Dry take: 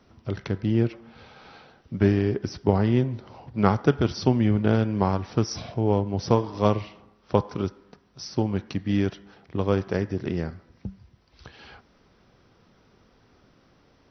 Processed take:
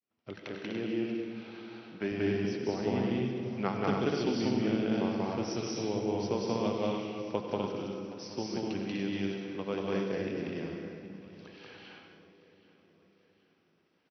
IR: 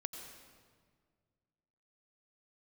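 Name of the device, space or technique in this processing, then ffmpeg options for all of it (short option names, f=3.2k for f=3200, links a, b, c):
stadium PA: -filter_complex "[0:a]highpass=200,equalizer=f=2.5k:t=o:w=0.79:g=7,aecho=1:1:186.6|247.8|288.6:1|0.708|0.501[a];[1:a]atrim=start_sample=2205[b];[a][b]afir=irnorm=-1:irlink=0,agate=range=-33dB:threshold=-48dB:ratio=3:detection=peak,asettb=1/sr,asplit=3[c][d][e];[c]atrim=end=0.404[f];[d]atrim=start=0.4:end=2.12,asetpts=PTS-STARTPTS,afade=t=in:d=0.004:c=qsin,afade=t=out:st=1.716:d=0.004:c=qsin,highpass=f=210:p=1[g];[e]atrim=start=2.116[h];[f][g]acrossfade=d=0.004:c1=hsin:c2=qsin[i];[i][h]acrossfade=d=0.004:c1=qsin:c2=hsin,adynamicequalizer=threshold=0.0126:dfrequency=1200:dqfactor=0.8:tfrequency=1200:tqfactor=0.8:attack=5:release=100:ratio=0.375:range=3.5:mode=cutabove:tftype=bell,aecho=1:1:775|1550|2325|3100:0.133|0.0653|0.032|0.0157,volume=-7.5dB"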